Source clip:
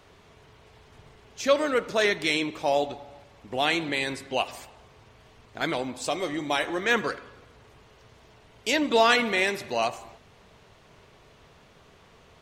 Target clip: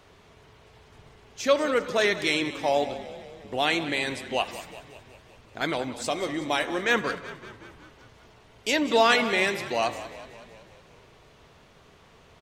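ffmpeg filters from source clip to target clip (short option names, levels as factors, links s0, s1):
-filter_complex "[0:a]asplit=8[s0][s1][s2][s3][s4][s5][s6][s7];[s1]adelay=187,afreqshift=-33,volume=0.188[s8];[s2]adelay=374,afreqshift=-66,volume=0.116[s9];[s3]adelay=561,afreqshift=-99,volume=0.0724[s10];[s4]adelay=748,afreqshift=-132,volume=0.0447[s11];[s5]adelay=935,afreqshift=-165,volume=0.0279[s12];[s6]adelay=1122,afreqshift=-198,volume=0.0172[s13];[s7]adelay=1309,afreqshift=-231,volume=0.0107[s14];[s0][s8][s9][s10][s11][s12][s13][s14]amix=inputs=8:normalize=0"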